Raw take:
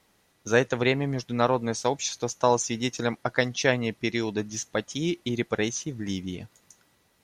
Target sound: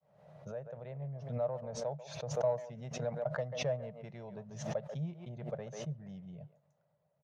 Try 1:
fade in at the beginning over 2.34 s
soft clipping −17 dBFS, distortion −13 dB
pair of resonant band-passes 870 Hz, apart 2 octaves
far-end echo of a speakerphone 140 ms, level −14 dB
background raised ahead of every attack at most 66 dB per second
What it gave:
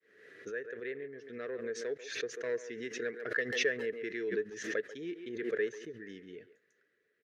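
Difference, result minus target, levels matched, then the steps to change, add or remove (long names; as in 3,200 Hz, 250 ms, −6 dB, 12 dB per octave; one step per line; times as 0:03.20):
1,000 Hz band −10.5 dB
change: pair of resonant band-passes 300 Hz, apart 2 octaves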